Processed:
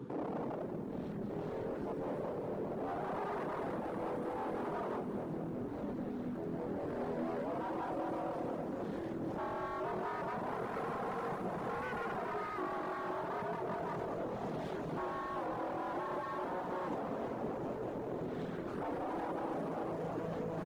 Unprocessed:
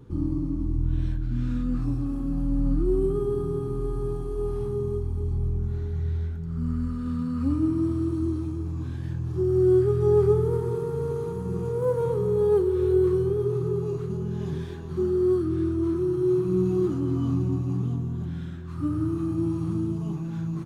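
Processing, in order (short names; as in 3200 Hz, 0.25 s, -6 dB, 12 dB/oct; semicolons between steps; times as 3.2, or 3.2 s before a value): in parallel at -1 dB: negative-ratio compressor -27 dBFS; on the sum: soft clip -10.5 dBFS, distortion -26 dB; limiter -24 dBFS, peak gain reduction 11.5 dB; wavefolder -32 dBFS; HPF 160 Hz 24 dB/oct; high shelf 2500 Hz -11 dB; frequency-shifting echo 0.188 s, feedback 56%, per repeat -53 Hz, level -10 dB; reverb removal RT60 0.64 s; lo-fi delay 0.208 s, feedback 80%, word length 11-bit, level -14 dB; gain +1 dB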